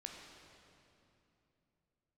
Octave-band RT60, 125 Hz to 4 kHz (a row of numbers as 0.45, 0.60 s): 4.0, 3.5, 3.1, 2.7, 2.5, 2.2 s